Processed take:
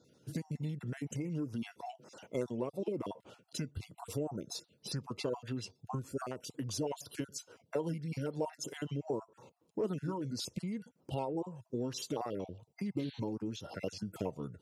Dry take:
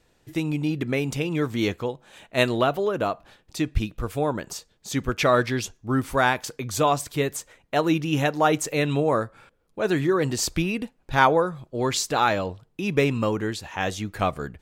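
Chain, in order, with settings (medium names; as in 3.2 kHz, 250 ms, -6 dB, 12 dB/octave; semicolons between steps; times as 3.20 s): random holes in the spectrogram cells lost 28%; high-pass 100 Hz 24 dB/octave; peaking EQ 740 Hz -4 dB 1.2 oct; formant shift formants -4 st; band-stop 1.2 kHz, Q 28; small resonant body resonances 940/2700 Hz, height 7 dB; compression 5:1, threshold -37 dBFS, peak gain reduction 20.5 dB; painted sound noise, 12.99–13.20 s, 1.5–4.5 kHz -50 dBFS; ten-band graphic EQ 500 Hz +8 dB, 1 kHz -4 dB, 2 kHz -11 dB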